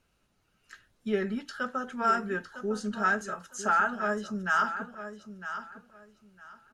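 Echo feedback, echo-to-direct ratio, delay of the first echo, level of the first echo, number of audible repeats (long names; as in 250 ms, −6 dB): 21%, −11.0 dB, 956 ms, −11.0 dB, 2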